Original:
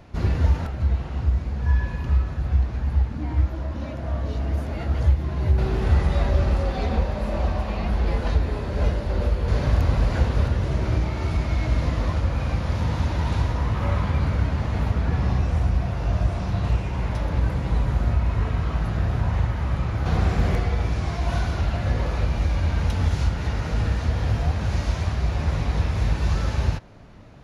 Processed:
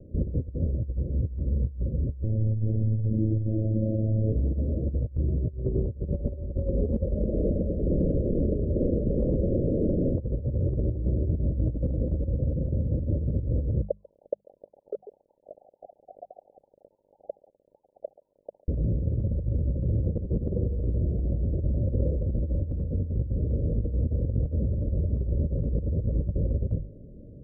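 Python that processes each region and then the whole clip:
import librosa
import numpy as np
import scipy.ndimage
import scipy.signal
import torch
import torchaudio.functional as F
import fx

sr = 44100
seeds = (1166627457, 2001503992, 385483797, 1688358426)

y = fx.chain(x, sr, fx.echo_single(ms=360, db=-15.0),
    fx.robotise(hz=109.0),
    fx.env_flatten(amount_pct=50), at=(2.23, 4.32))
y = fx.chain(y, sr, fx.cvsd(bps=16000),
    fx.overflow_wrap(gain_db=19.0),
    fx.echo_feedback(ms=106, feedback_pct=38, wet_db=-14.5), at=(7.23, 10.15))
y = fx.chain(y, sr, fx.sine_speech(),
    fx.echo_single(ms=143, db=-23.0), at=(13.81, 18.68))
y = scipy.signal.sosfilt(scipy.signal.butter(16, 580.0, 'lowpass', fs=sr, output='sos'), y)
y = fx.hum_notches(y, sr, base_hz=50, count=4)
y = fx.over_compress(y, sr, threshold_db=-25.0, ratio=-0.5)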